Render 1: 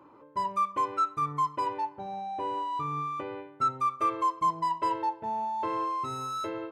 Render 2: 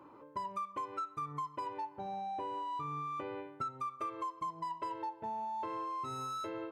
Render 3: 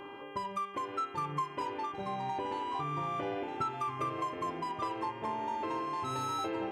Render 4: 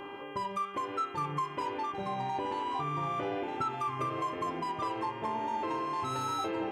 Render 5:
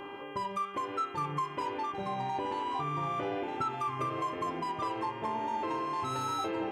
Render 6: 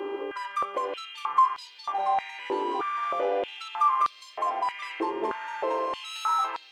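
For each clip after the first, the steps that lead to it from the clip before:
downward compressor, threshold −36 dBFS, peak gain reduction 13 dB; level −1 dB
hum with harmonics 400 Hz, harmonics 8, −55 dBFS −4 dB per octave; dynamic equaliser 900 Hz, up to −5 dB, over −52 dBFS, Q 1.4; delay with pitch and tempo change per echo 742 ms, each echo −2 semitones, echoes 3, each echo −6 dB; level +6 dB
in parallel at −2 dB: brickwall limiter −31 dBFS, peak gain reduction 8 dB; on the sum: flanger 1.1 Hz, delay 3.4 ms, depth 5.1 ms, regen +85%; level +2.5 dB
no processing that can be heard
in parallel at −6 dB: soft clipping −36 dBFS, distortion −10 dB; on the sum: high-pass on a step sequencer 3.2 Hz 370–4,200 Hz

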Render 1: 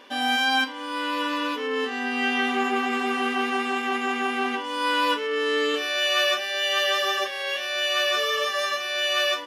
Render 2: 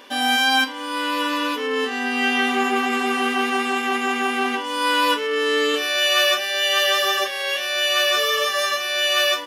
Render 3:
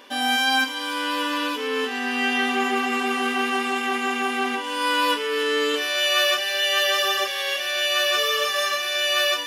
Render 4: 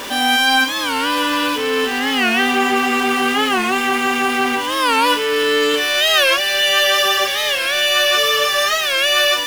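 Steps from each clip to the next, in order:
high-shelf EQ 7,800 Hz +10 dB; level +3.5 dB
delay with a high-pass on its return 296 ms, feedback 65%, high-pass 1,800 Hz, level −9 dB; level −2.5 dB
converter with a step at zero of −29 dBFS; wow of a warped record 45 rpm, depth 160 cents; level +5 dB

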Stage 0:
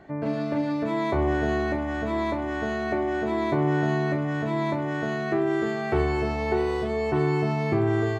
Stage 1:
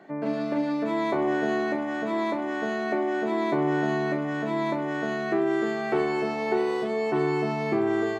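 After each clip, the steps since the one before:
high-pass filter 180 Hz 24 dB per octave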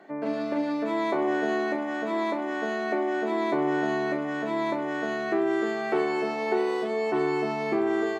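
high-pass filter 230 Hz 12 dB per octave

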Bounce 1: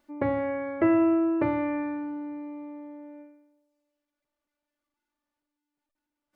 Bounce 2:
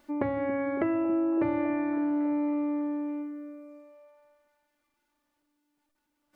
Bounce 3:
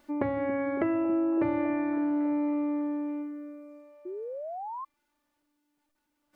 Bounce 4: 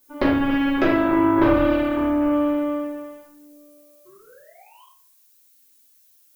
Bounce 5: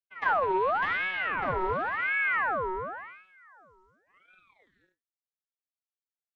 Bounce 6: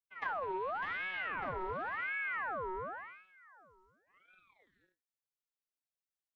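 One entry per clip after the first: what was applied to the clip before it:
downward compressor 6 to 1, threshold −35 dBFS, peak gain reduction 15.5 dB; echo through a band-pass that steps 278 ms, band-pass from 230 Hz, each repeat 0.7 octaves, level −6.5 dB; level +8 dB
sound drawn into the spectrogram rise, 0:04.05–0:04.85, 350–1,100 Hz −37 dBFS
harmonic generator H 7 −16 dB, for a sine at −13.5 dBFS; background noise violet −67 dBFS; convolution reverb RT60 0.60 s, pre-delay 4 ms, DRR −7 dB; level +4 dB
channel vocoder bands 16, square 92.2 Hz; downward expander −55 dBFS; ring modulator whose carrier an LFO sweeps 1,300 Hz, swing 50%, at 0.92 Hz; level −5 dB
downward compressor 4 to 1, threshold −30 dBFS, peak gain reduction 8 dB; level −5 dB

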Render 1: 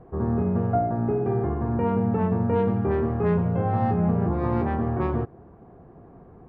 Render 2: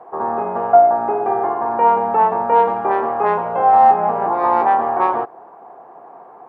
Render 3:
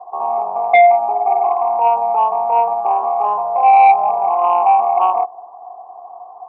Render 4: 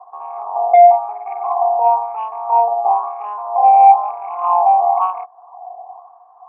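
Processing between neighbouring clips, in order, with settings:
high-pass filter 580 Hz 12 dB per octave; parametric band 860 Hz +12.5 dB 0.95 octaves; level +8 dB
formant resonators in series a; sine wavefolder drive 6 dB, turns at −5 dBFS
auto-filter band-pass sine 1 Hz 630–1,900 Hz; level +2.5 dB

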